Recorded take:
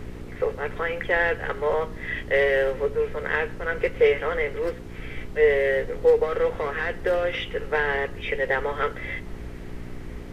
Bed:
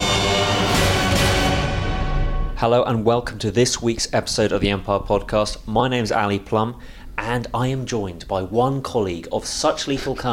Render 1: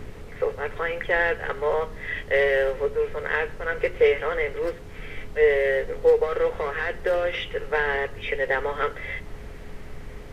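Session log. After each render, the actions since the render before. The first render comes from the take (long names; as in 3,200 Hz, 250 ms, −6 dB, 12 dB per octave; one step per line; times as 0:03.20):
hum removal 60 Hz, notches 6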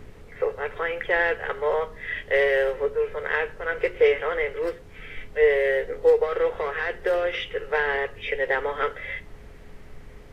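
noise reduction from a noise print 6 dB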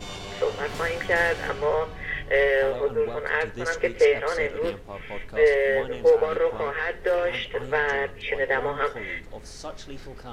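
mix in bed −18.5 dB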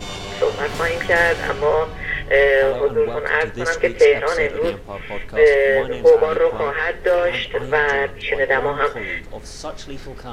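level +6.5 dB
brickwall limiter −3 dBFS, peak gain reduction 1 dB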